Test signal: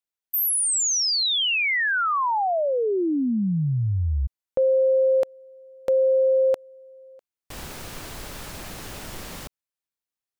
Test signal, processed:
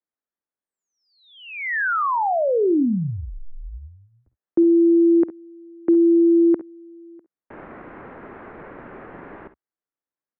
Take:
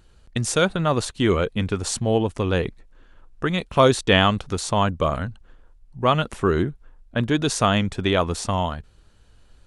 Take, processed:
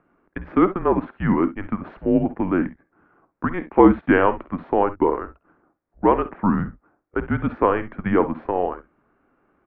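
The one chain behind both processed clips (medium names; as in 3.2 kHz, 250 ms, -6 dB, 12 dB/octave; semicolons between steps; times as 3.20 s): ten-band graphic EQ 125 Hz +11 dB, 250 Hz -11 dB, 500 Hz +6 dB; early reflections 52 ms -15.5 dB, 66 ms -16.5 dB; mistuned SSB -190 Hz 240–2100 Hz; trim +1 dB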